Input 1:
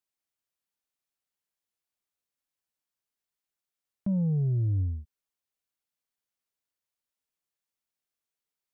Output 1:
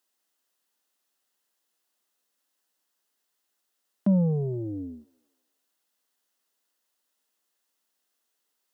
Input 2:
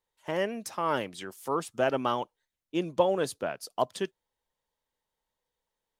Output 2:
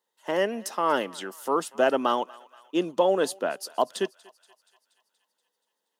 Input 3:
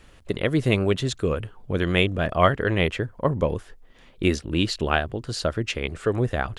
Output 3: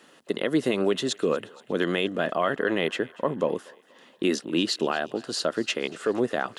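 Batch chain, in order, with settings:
high-pass 210 Hz 24 dB/octave; band-stop 2.3 kHz, Q 7.4; peak limiter -14.5 dBFS; thinning echo 238 ms, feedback 63%, high-pass 810 Hz, level -21 dB; normalise loudness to -27 LUFS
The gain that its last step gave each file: +11.5 dB, +4.5 dB, +1.5 dB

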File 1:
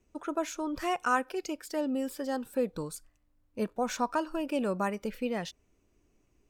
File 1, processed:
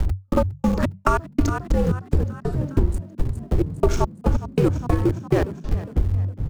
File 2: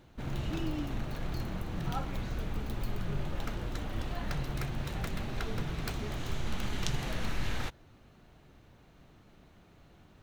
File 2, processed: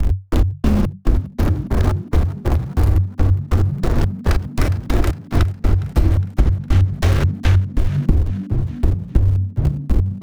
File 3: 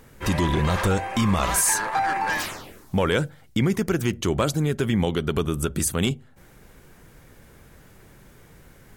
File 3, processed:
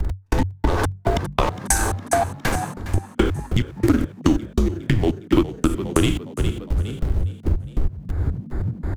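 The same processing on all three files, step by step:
local Wiener filter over 15 samples; wind noise 92 Hz -28 dBFS; Schroeder reverb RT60 0.66 s, combs from 26 ms, DRR 5.5 dB; trance gate "x..x..xx.." 141 bpm -60 dB; resampled via 32 kHz; in parallel at -10 dB: small samples zeroed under -29 dBFS; on the sum: frequency shift -96 Hz; reverse; upward compressor, threshold -27 dBFS; reverse; frequency-shifting echo 410 ms, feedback 47%, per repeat +49 Hz, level -16.5 dB; compression 6:1, threshold -29 dBFS; dynamic bell 330 Hz, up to +7 dB, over -53 dBFS, Q 2.2; peak normalisation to -2 dBFS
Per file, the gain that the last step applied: +13.0 dB, +18.0 dB, +12.0 dB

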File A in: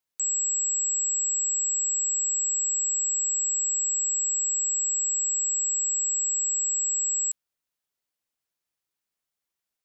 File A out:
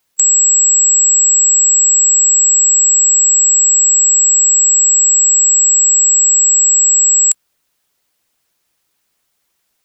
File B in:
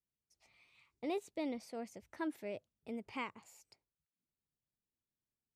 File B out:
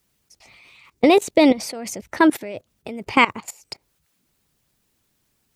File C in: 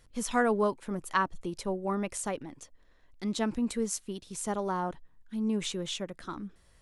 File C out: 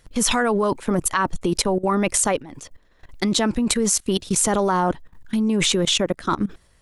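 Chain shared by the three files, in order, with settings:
harmonic-percussive split percussive +5 dB; level held to a coarse grid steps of 19 dB; peak normalisation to -2 dBFS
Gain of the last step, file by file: +28.0 dB, +26.0 dB, +18.5 dB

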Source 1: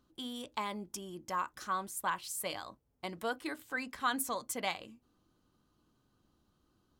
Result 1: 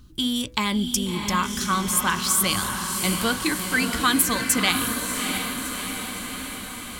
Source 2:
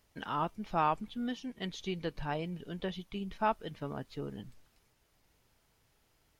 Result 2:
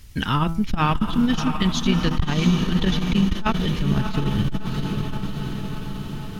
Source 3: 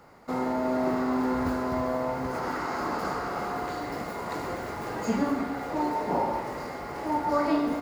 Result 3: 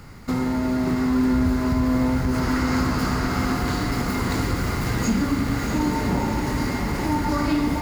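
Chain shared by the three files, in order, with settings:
peaking EQ 660 Hz -15 dB 2 oct; de-hum 164.5 Hz, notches 14; vibrato 8.1 Hz 10 cents; bass shelf 140 Hz +11.5 dB; compression 2.5:1, threshold -36 dBFS; on a send: echo that smears into a reverb 665 ms, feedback 66%, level -5.5 dB; on the sum: transformer saturation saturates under 84 Hz; normalise loudness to -23 LUFS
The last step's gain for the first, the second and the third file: +19.5 dB, +21.0 dB, +14.0 dB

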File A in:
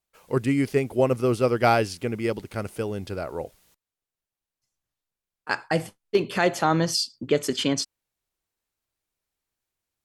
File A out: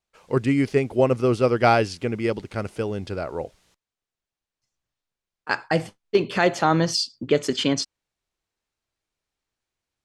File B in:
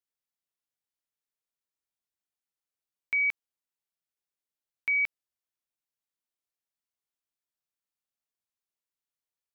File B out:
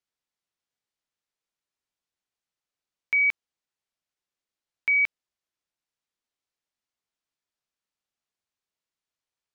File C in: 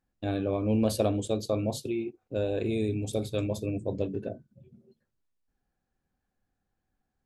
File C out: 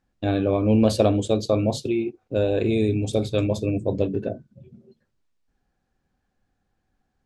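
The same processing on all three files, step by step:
low-pass 6.9 kHz 12 dB/octave; normalise loudness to -23 LUFS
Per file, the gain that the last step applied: +2.0 dB, +4.5 dB, +7.5 dB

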